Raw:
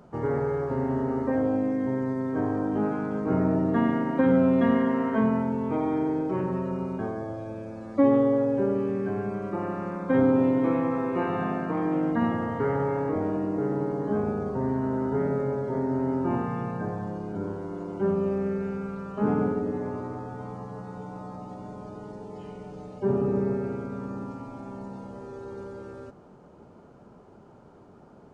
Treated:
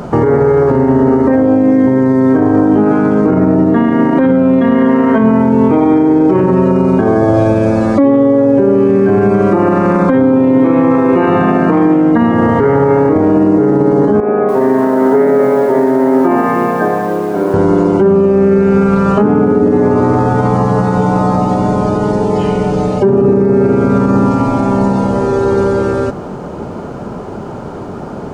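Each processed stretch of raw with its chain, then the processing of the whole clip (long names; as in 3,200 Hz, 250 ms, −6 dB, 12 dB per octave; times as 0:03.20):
0:14.20–0:17.54: loudspeaker in its box 480–2,100 Hz, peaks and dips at 500 Hz −5 dB, 890 Hz −9 dB, 1,400 Hz −9 dB + feedback echo at a low word length 286 ms, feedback 35%, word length 9 bits, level −13 dB
whole clip: dynamic equaliser 330 Hz, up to +4 dB, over −35 dBFS, Q 1.4; downward compressor, threshold −31 dBFS; boost into a limiter +28.5 dB; level −1 dB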